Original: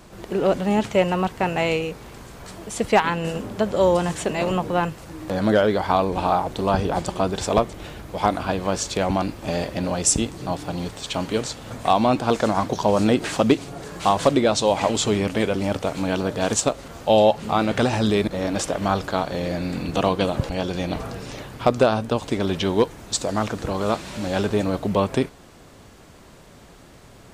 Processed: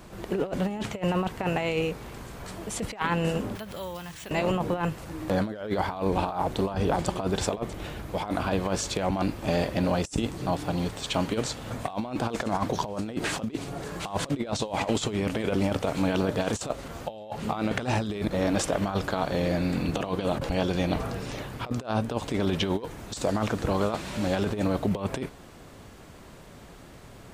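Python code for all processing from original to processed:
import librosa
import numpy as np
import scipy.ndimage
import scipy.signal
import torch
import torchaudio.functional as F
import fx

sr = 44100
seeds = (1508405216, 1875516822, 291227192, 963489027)

y = fx.chain(x, sr, fx.tone_stack(knobs='5-5-5'),
    fx.resample_bad(factor=3, down='filtered', up='hold'),
    fx.pre_swell(db_per_s=52.0), at=(3.55, 4.31))
y = fx.high_shelf(y, sr, hz=7400.0, db=7.5)
y = fx.over_compress(y, sr, threshold_db=-23.0, ratio=-0.5)
y = fx.bass_treble(y, sr, bass_db=1, treble_db=-6)
y = y * librosa.db_to_amplitude(-3.5)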